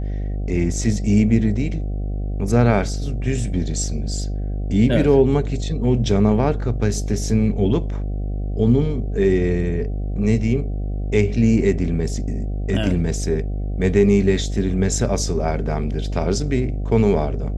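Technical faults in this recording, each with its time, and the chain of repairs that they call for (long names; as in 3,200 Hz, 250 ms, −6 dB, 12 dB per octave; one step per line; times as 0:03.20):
mains buzz 50 Hz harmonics 15 −24 dBFS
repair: hum removal 50 Hz, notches 15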